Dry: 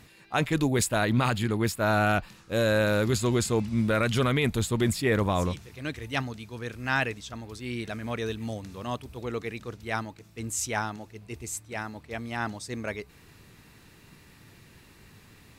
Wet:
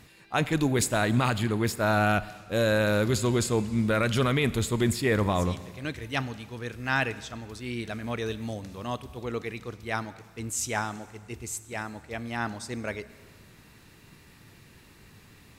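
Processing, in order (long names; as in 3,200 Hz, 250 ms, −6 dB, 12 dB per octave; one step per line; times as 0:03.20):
four-comb reverb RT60 1.6 s, combs from 30 ms, DRR 15.5 dB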